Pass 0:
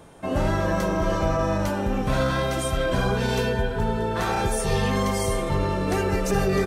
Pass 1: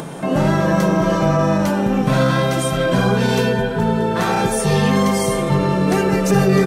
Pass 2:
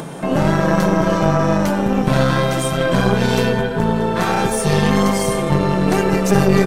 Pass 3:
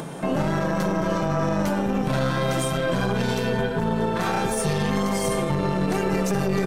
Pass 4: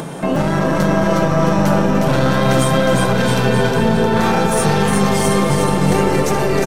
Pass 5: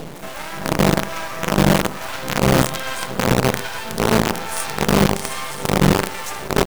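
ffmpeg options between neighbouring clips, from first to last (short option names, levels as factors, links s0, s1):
-af "acompressor=mode=upward:threshold=0.0398:ratio=2.5,lowshelf=f=110:t=q:w=3:g=-10.5,volume=2"
-af "aeval=exprs='0.708*(cos(1*acos(clip(val(0)/0.708,-1,1)))-cos(1*PI/2))+0.141*(cos(4*acos(clip(val(0)/0.708,-1,1)))-cos(4*PI/2))+0.0316*(cos(6*acos(clip(val(0)/0.708,-1,1)))-cos(6*PI/2))':c=same"
-af "alimiter=limit=0.355:level=0:latency=1:release=39,volume=0.631"
-af "aecho=1:1:360|666|926.1|1147|1335:0.631|0.398|0.251|0.158|0.1,volume=2.11"
-filter_complex "[0:a]acrossover=split=740[s0][s1];[s0]aeval=exprs='val(0)*(1-1/2+1/2*cos(2*PI*1.2*n/s))':c=same[s2];[s1]aeval=exprs='val(0)*(1-1/2-1/2*cos(2*PI*1.2*n/s))':c=same[s3];[s2][s3]amix=inputs=2:normalize=0,acrusher=bits=3:dc=4:mix=0:aa=0.000001"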